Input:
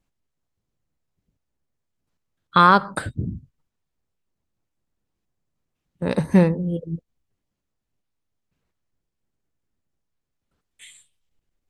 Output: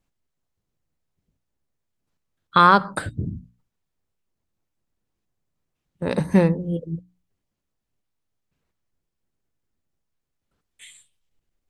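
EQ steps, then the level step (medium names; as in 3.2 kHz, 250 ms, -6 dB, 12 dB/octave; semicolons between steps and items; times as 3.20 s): hum notches 60/120/180/240/300 Hz; 0.0 dB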